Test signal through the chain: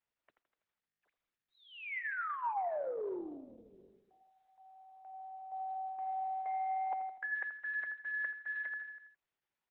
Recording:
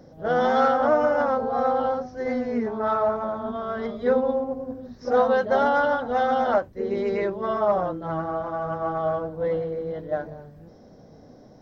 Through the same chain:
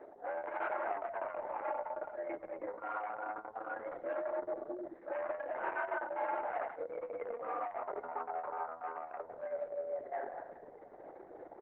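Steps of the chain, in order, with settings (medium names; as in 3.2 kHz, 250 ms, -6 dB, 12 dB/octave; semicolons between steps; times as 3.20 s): saturation -22 dBFS; feedback delay 82 ms, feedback 52%, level -11 dB; reverse; compression 4:1, threshold -39 dBFS; reverse; mistuned SSB +89 Hz 270–2100 Hz; trim +1.5 dB; Opus 6 kbps 48 kHz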